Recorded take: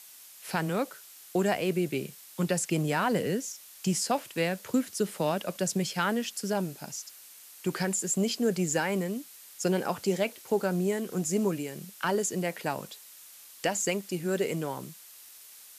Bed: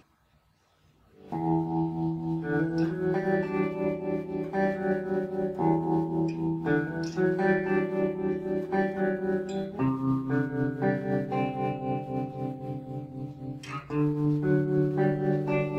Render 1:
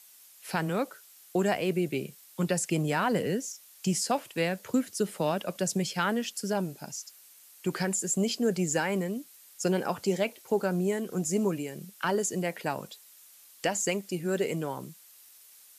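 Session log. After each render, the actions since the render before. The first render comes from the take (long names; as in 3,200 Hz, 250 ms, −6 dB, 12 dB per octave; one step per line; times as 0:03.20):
broadband denoise 6 dB, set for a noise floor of −51 dBFS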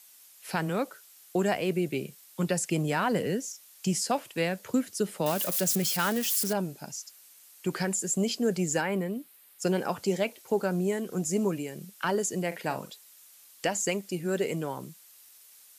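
0:05.26–0:06.53: spike at every zero crossing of −24 dBFS
0:08.81–0:09.62: parametric band 6,400 Hz −11 dB 0.96 octaves
0:12.47–0:12.90: double-tracking delay 45 ms −11.5 dB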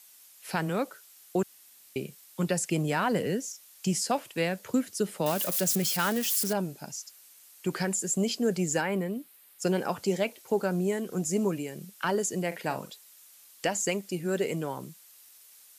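0:01.43–0:01.96: fill with room tone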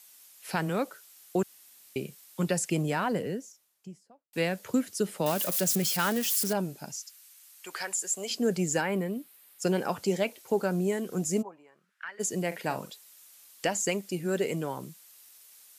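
0:02.62–0:04.33: fade out and dull
0:06.98–0:08.30: high-pass filter 1,400 Hz → 560 Hz
0:11.41–0:12.19: resonant band-pass 750 Hz → 2,200 Hz, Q 5.2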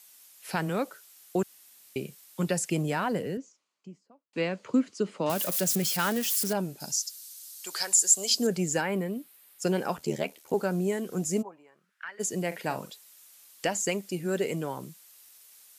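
0:03.37–0:05.30: loudspeaker in its box 160–6,100 Hz, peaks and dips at 270 Hz +4 dB, 750 Hz −4 dB, 1,100 Hz +4 dB, 1,700 Hz −5 dB, 3,600 Hz −5 dB, 5,500 Hz −7 dB
0:06.80–0:08.47: high shelf with overshoot 3,300 Hz +8.5 dB, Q 1.5
0:09.96–0:10.54: ring modulation 38 Hz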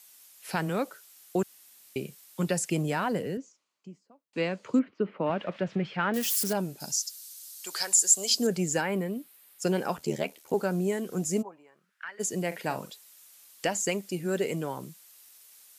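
0:04.79–0:06.14: low-pass filter 2,600 Hz 24 dB per octave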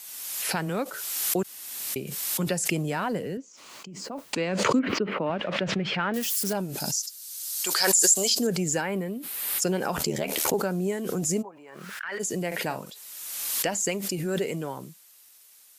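background raised ahead of every attack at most 32 dB per second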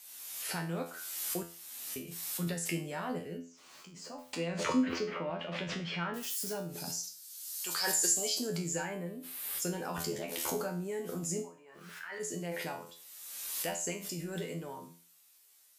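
tuned comb filter 85 Hz, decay 0.39 s, harmonics all, mix 90%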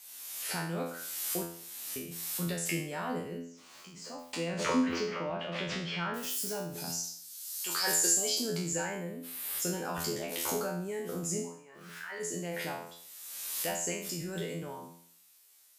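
peak hold with a decay on every bin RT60 0.58 s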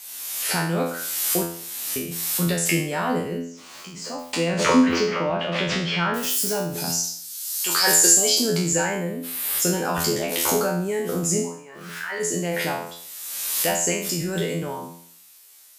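level +11.5 dB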